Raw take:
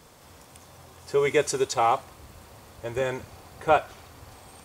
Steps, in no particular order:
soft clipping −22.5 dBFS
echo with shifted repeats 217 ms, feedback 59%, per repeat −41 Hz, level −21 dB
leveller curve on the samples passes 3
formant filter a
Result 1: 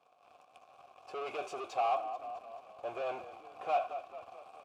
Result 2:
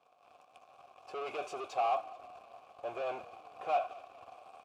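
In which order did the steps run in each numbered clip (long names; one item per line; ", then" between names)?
leveller curve on the samples, then echo with shifted repeats, then soft clipping, then formant filter
leveller curve on the samples, then soft clipping, then echo with shifted repeats, then formant filter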